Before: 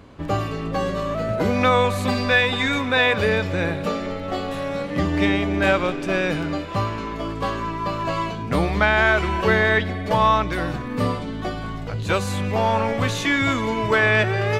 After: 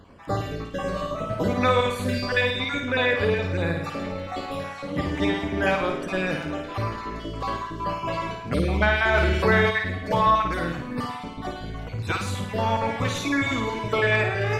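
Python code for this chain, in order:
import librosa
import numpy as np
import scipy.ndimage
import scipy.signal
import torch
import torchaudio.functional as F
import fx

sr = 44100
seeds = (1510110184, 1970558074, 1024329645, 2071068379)

y = fx.spec_dropout(x, sr, seeds[0], share_pct=32)
y = fx.high_shelf(y, sr, hz=6300.0, db=-8.0, at=(2.51, 3.55))
y = fx.room_flutter(y, sr, wall_m=9.1, rt60_s=0.6)
y = fx.env_flatten(y, sr, amount_pct=50, at=(9.13, 9.69), fade=0.02)
y = y * librosa.db_to_amplitude(-3.5)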